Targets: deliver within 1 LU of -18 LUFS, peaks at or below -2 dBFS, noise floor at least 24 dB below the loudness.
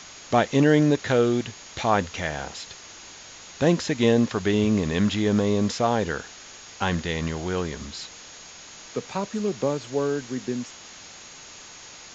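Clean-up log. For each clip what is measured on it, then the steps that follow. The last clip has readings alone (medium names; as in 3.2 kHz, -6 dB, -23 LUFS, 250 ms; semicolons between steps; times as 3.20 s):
steady tone 6.6 kHz; tone level -48 dBFS; noise floor -44 dBFS; noise floor target -49 dBFS; loudness -24.5 LUFS; peak level -6.0 dBFS; loudness target -18.0 LUFS
-> band-stop 6.6 kHz, Q 30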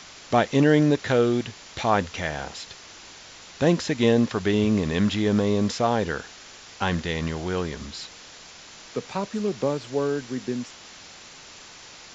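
steady tone not found; noise floor -46 dBFS; noise floor target -49 dBFS
-> noise reduction 6 dB, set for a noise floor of -46 dBFS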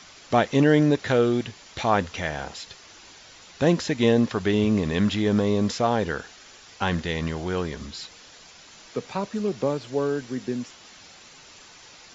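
noise floor -49 dBFS; loudness -24.5 LUFS; peak level -6.0 dBFS; loudness target -18.0 LUFS
-> trim +6.5 dB; peak limiter -2 dBFS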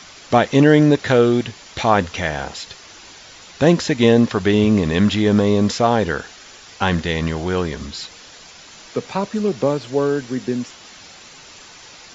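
loudness -18.0 LUFS; peak level -2.0 dBFS; noise floor -42 dBFS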